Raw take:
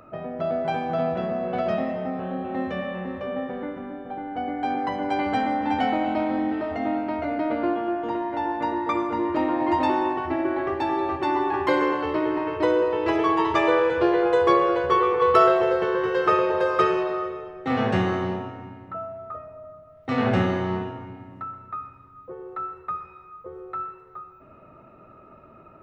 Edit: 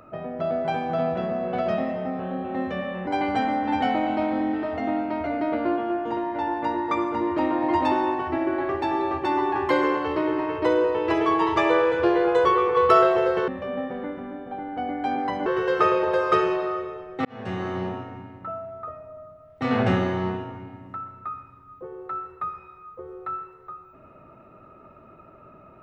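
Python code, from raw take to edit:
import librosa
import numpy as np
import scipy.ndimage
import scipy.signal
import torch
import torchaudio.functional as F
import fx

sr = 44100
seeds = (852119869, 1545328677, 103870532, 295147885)

y = fx.edit(x, sr, fx.move(start_s=3.07, length_s=1.98, to_s=15.93),
    fx.cut(start_s=14.43, length_s=0.47),
    fx.fade_in_span(start_s=17.72, length_s=0.69), tone=tone)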